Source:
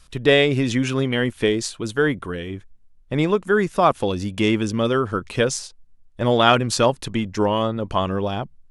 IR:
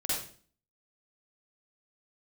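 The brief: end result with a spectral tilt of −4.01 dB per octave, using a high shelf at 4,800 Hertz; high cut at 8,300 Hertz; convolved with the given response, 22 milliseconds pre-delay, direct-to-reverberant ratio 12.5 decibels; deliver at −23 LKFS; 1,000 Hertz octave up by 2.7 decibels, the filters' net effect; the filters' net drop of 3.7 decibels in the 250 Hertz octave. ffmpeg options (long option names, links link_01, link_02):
-filter_complex "[0:a]lowpass=8300,equalizer=frequency=250:width_type=o:gain=-5,equalizer=frequency=1000:width_type=o:gain=3.5,highshelf=frequency=4800:gain=7.5,asplit=2[link_01][link_02];[1:a]atrim=start_sample=2205,adelay=22[link_03];[link_02][link_03]afir=irnorm=-1:irlink=0,volume=-18dB[link_04];[link_01][link_04]amix=inputs=2:normalize=0,volume=-2.5dB"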